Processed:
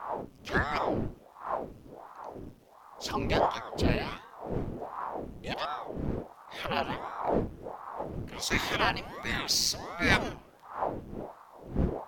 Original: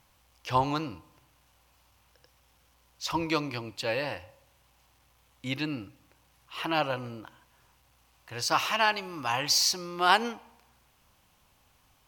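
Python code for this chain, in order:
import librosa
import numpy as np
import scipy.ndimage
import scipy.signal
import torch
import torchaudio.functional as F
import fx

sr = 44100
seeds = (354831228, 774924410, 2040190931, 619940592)

y = fx.dmg_wind(x, sr, seeds[0], corner_hz=220.0, level_db=-33.0)
y = fx.ring_lfo(y, sr, carrier_hz=550.0, swing_pct=90, hz=1.4)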